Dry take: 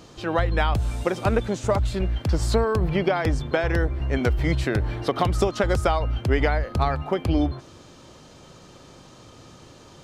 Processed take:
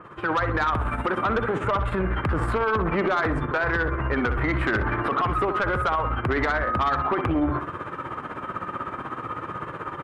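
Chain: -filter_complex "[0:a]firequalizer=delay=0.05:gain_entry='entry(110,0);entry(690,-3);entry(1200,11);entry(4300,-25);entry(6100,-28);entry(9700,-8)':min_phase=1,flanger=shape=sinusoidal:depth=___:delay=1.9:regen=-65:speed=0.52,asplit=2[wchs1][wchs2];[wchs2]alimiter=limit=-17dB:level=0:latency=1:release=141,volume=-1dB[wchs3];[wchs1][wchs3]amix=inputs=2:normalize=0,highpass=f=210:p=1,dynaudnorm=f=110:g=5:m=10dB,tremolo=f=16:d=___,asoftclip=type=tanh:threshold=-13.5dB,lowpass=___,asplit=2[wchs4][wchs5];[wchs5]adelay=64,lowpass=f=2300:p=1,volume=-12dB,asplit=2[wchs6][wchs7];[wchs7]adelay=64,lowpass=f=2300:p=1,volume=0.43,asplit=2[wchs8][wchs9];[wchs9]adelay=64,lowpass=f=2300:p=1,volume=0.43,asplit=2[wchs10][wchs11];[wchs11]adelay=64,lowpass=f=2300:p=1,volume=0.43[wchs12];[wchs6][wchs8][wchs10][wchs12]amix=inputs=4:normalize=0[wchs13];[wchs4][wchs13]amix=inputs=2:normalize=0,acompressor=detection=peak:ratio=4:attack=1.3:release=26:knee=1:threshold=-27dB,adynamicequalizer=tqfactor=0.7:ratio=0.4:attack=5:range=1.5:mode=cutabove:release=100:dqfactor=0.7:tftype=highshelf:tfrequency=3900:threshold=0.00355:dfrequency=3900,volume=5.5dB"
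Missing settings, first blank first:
1.4, 0.66, 8000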